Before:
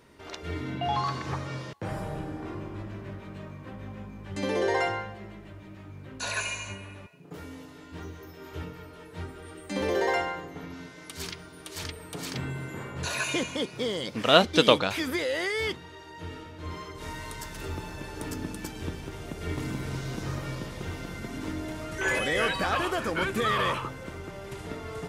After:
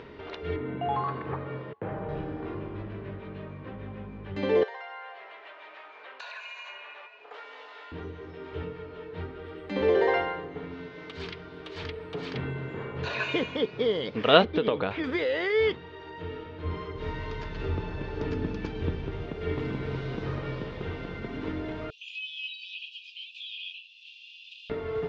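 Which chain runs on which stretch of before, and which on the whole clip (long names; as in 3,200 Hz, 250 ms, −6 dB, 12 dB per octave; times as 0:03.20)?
0:00.56–0:02.09: Bessel low-pass filter 1,700 Hz + low-shelf EQ 73 Hz −11 dB
0:04.63–0:07.92: high-pass filter 680 Hz 24 dB per octave + downward compressor 8 to 1, threshold −38 dBFS
0:12.57–0:13.28: linear-phase brick-wall low-pass 7,700 Hz + double-tracking delay 31 ms −13.5 dB
0:14.44–0:15.04: low-pass filter 1,600 Hz 6 dB per octave + downward compressor 12 to 1, threshold −22 dBFS
0:16.64–0:19.26: low-shelf EQ 200 Hz +7 dB + bad sample-rate conversion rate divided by 3×, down none, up filtered
0:21.90–0:24.70: Chebyshev high-pass filter 2,500 Hz, order 10 + high-frequency loss of the air 86 metres
whole clip: low-pass filter 3,700 Hz 24 dB per octave; parametric band 440 Hz +9.5 dB 0.23 octaves; upward compression, threshold −37 dBFS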